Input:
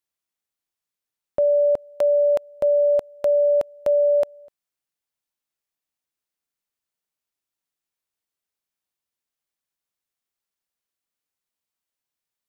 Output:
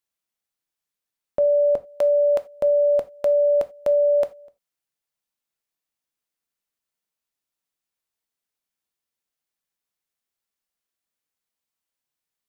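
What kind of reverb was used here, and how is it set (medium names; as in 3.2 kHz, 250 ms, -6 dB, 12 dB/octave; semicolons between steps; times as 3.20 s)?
gated-style reverb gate 110 ms falling, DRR 11 dB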